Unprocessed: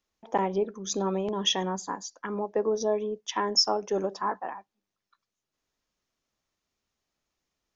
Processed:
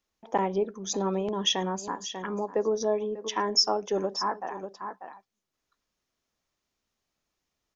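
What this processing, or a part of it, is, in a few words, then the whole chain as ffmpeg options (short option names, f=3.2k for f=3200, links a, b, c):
ducked delay: -filter_complex "[0:a]asplit=3[a][b][c];[b]adelay=592,volume=-8dB[d];[c]apad=whole_len=368274[e];[d][e]sidechaincompress=threshold=-40dB:ratio=8:attack=6.3:release=118[f];[a][f]amix=inputs=2:normalize=0"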